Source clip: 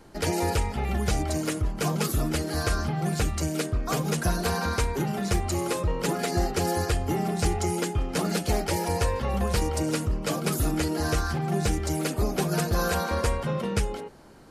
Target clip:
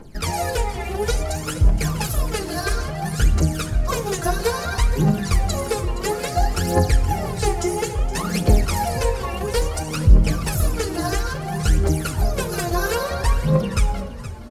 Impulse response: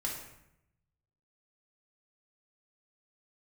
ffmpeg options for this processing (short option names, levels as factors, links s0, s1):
-filter_complex "[0:a]asettb=1/sr,asplit=3[s0][s1][s2];[s0]atrim=end=9.964[s3];[s1]atrim=start=9.96:end=10.41,asetpts=PTS-STARTPTS,afade=t=in:d=0.004:c=qsin,afade=t=out:st=0.446:d=0.004:c=qsin,bass=f=250:g=4,treble=f=4000:g=-4[s4];[s2]atrim=start=10.406[s5];[s3][s4]acrossfade=d=0.004:c1=hsin:c2=qsin[s6];[s6][s5]acrossfade=d=0.004:c1=qsin:c2=hsin,aphaser=in_gain=1:out_gain=1:delay=3:decay=0.78:speed=0.59:type=triangular,asplit=5[s7][s8][s9][s10][s11];[s8]adelay=470,afreqshift=38,volume=0.188[s12];[s9]adelay=940,afreqshift=76,volume=0.0733[s13];[s10]adelay=1410,afreqshift=114,volume=0.0285[s14];[s11]adelay=1880,afreqshift=152,volume=0.0112[s15];[s7][s12][s13][s14][s15]amix=inputs=5:normalize=0,asplit=2[s16][s17];[1:a]atrim=start_sample=2205,asetrate=35721,aresample=44100[s18];[s17][s18]afir=irnorm=-1:irlink=0,volume=0.251[s19];[s16][s19]amix=inputs=2:normalize=0,volume=0.794"